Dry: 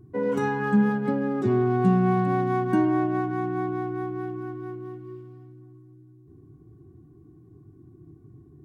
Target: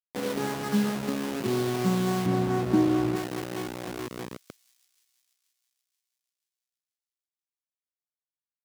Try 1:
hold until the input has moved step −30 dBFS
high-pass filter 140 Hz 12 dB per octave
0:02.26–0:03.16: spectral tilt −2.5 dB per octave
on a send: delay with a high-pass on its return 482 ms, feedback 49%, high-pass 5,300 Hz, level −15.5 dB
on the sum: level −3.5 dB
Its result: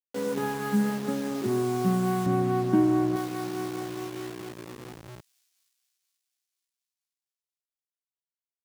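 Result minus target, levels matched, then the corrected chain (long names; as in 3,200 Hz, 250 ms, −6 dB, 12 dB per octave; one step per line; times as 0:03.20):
hold until the input has moved: distortion −6 dB
hold until the input has moved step −23 dBFS
high-pass filter 140 Hz 12 dB per octave
0:02.26–0:03.16: spectral tilt −2.5 dB per octave
on a send: delay with a high-pass on its return 482 ms, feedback 49%, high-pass 5,300 Hz, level −15.5 dB
on the sum: level −3.5 dB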